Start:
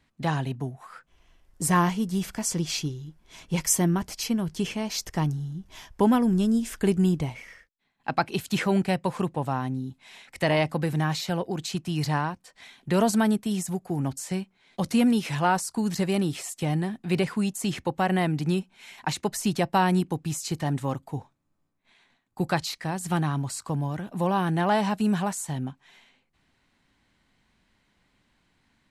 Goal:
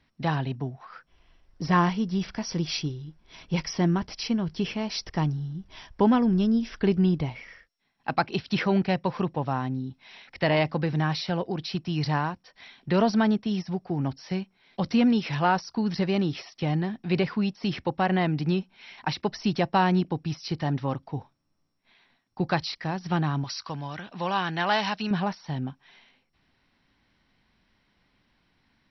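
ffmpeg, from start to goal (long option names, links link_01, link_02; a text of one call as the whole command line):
ffmpeg -i in.wav -filter_complex "[0:a]asettb=1/sr,asplit=3[link_01][link_02][link_03];[link_01]atrim=end=23.444[link_04];[link_02]atrim=start=23.44:end=25.11,asetpts=PTS-STARTPTS,afade=type=in:duration=0.004:curve=qsin,afade=type=out:start_time=1.666:duration=0.004:curve=qsin,tiltshelf=frequency=970:gain=-8.5[link_05];[link_03]atrim=start=25.106[link_06];[link_04][link_05]acrossfade=duration=0.004:curve1=hsin:curve2=qsin[link_07];[link_07][link_06]acrossfade=duration=0.004:curve1=qsin:curve2=hsin" -ar 22050 -c:a mp2 -b:a 48k out.mp2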